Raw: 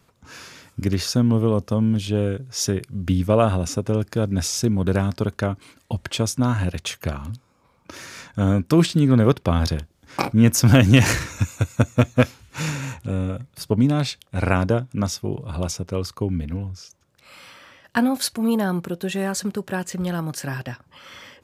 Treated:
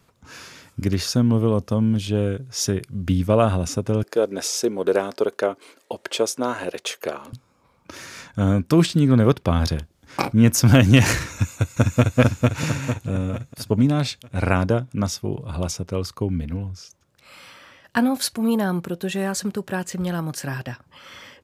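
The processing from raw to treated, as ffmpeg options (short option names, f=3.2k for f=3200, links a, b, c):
-filter_complex "[0:a]asettb=1/sr,asplit=3[a][b][c];[a]atrim=end=4.034[d];[b]atrim=start=4.03:end=7.33,asetpts=PTS-STARTPTS,afade=t=in:d=0.004:c=qsin,afade=t=out:st=3.296:d=0.004:c=qsin,highpass=f=430:t=q:w=2.4[e];[c]atrim=start=7.326[f];[d][e]acrossfade=d=0.004:c1=hsin:c2=qsin[g];[g][f]acrossfade=d=0.004:c1=qsin:c2=hsin,asplit=2[h][i];[i]afade=t=in:st=11.31:d=0.01,afade=t=out:st=12.18:d=0.01,aecho=0:1:450|900|1350|1800|2250|2700:0.841395|0.378628|0.170383|0.0766721|0.0345025|0.0155261[j];[h][j]amix=inputs=2:normalize=0"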